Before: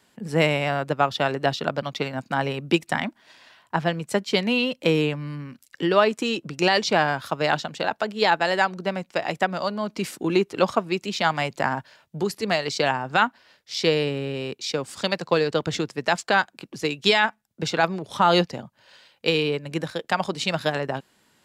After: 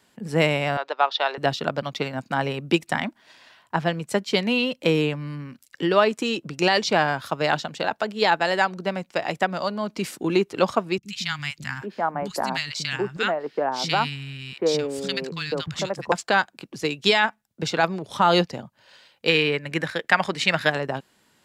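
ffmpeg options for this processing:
ffmpeg -i in.wav -filter_complex "[0:a]asettb=1/sr,asplit=3[link_01][link_02][link_03];[link_01]atrim=end=0.774[link_04];[link_02]atrim=start=0.77:end=1.38,asetpts=PTS-STARTPTS,afade=type=in:duration=0.004:curve=qsin,afade=type=out:start_time=0.606:duration=0.004:curve=qsin,highpass=frequency=460:width=0.5412,highpass=frequency=460:width=1.3066,equalizer=frequency=530:width_type=q:width=4:gain=-4,equalizer=frequency=920:width_type=q:width=4:gain=4,equalizer=frequency=3800:width_type=q:width=4:gain=6,lowpass=frequency=5300:width=0.5412,lowpass=frequency=5300:width=1.3066[link_05];[link_03]atrim=start=1.376[link_06];[link_04][link_05]acrossfade=duration=0.004:curve1=hsin:curve2=qsin[link_07];[link_07][link_06]acrossfade=duration=0.004:curve1=qsin:curve2=hsin,asettb=1/sr,asplit=3[link_08][link_09][link_10];[link_08]atrim=end=10.984[link_11];[link_09]atrim=start=10.98:end=16.12,asetpts=PTS-STARTPTS,afade=type=in:duration=0.004:curve=qsin,afade=type=out:start_time=5.136:duration=0.004:curve=qsin,acrossover=split=200|1400[link_12][link_13][link_14];[link_14]adelay=50[link_15];[link_13]adelay=780[link_16];[link_12][link_16][link_15]amix=inputs=3:normalize=0,atrim=end_sample=226674[link_17];[link_10]atrim=start=16.116[link_18];[link_11][link_17]acrossfade=duration=0.004:curve1=hsin:curve2=qsin[link_19];[link_19][link_18]acrossfade=duration=0.004:curve1=qsin:curve2=hsin,asettb=1/sr,asplit=3[link_20][link_21][link_22];[link_20]atrim=end=19.294[link_23];[link_21]atrim=start=19.29:end=20.7,asetpts=PTS-STARTPTS,afade=type=in:duration=0.004:curve=qsin,afade=type=out:start_time=1.406:duration=0.004:curve=qsin,equalizer=frequency=1900:width_type=o:width=0.92:gain=11.5[link_24];[link_22]atrim=start=20.696[link_25];[link_23][link_24]acrossfade=duration=0.004:curve1=hsin:curve2=qsin[link_26];[link_26][link_25]acrossfade=duration=0.004:curve1=qsin:curve2=hsin" out.wav

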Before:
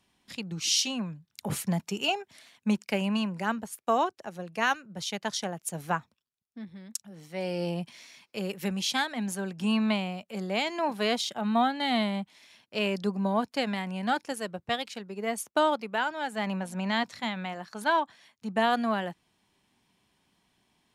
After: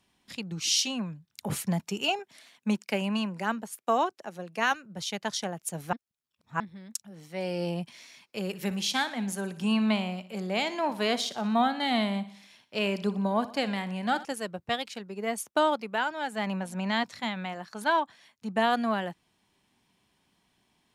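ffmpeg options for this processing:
ffmpeg -i in.wav -filter_complex "[0:a]asettb=1/sr,asplit=3[link_01][link_02][link_03];[link_01]atrim=end=2.194[link_04];[link_02]atrim=start=2.19:end=4.72,asetpts=PTS-STARTPTS,afade=type=in:duration=0.004:curve=qsin,afade=type=out:start_time=2.526:duration=0.004:curve=qsin,highpass=160[link_05];[link_03]atrim=start=4.716[link_06];[link_04][link_05]acrossfade=duration=0.004:curve1=hsin:curve2=qsin[link_07];[link_07][link_06]acrossfade=duration=0.004:curve1=qsin:curve2=hsin,asettb=1/sr,asplit=3[link_08][link_09][link_10];[link_08]atrim=end=8.414[link_11];[link_09]atrim=start=8.41:end=14.25,asetpts=PTS-STARTPTS,afade=type=in:duration=0.004:curve=qsin,afade=type=out:start_time=5.836:duration=0.004:curve=qsin,aecho=1:1:60|120|180|240|300:0.168|0.0873|0.0454|0.0236|0.0123,atrim=end_sample=257544[link_12];[link_10]atrim=start=14.246[link_13];[link_11][link_12]acrossfade=duration=0.004:curve1=hsin:curve2=qsin[link_14];[link_14][link_13]acrossfade=duration=0.004:curve1=qsin:curve2=hsin,asplit=3[link_15][link_16][link_17];[link_15]atrim=end=5.932[link_18];[link_16]atrim=start=5.928:end=6.602,asetpts=PTS-STARTPTS,areverse[link_19];[link_17]atrim=start=6.598[link_20];[link_18][link_19]acrossfade=duration=0.004:curve1=hsin:curve2=hsin[link_21];[link_21][link_20]acrossfade=duration=0.004:curve1=hsin:curve2=hsin" out.wav

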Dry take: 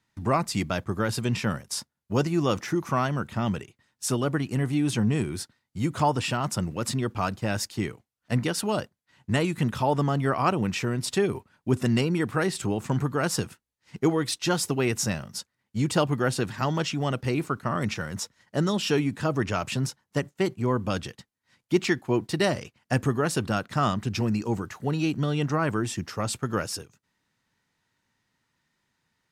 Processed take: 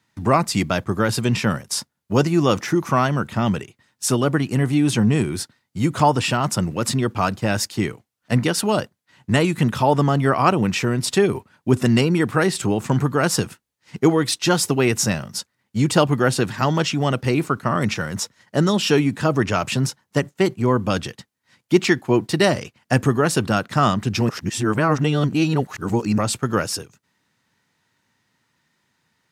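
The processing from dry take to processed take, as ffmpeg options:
ffmpeg -i in.wav -filter_complex "[0:a]asplit=3[link_01][link_02][link_03];[link_01]atrim=end=24.292[link_04];[link_02]atrim=start=24.288:end=26.182,asetpts=PTS-STARTPTS,areverse[link_05];[link_03]atrim=start=26.178[link_06];[link_04][link_05]acrossfade=duration=0.004:curve1=hsin:curve2=hsin[link_07];[link_07][link_06]acrossfade=duration=0.004:curve1=hsin:curve2=hsin,highpass=83,volume=7dB" out.wav

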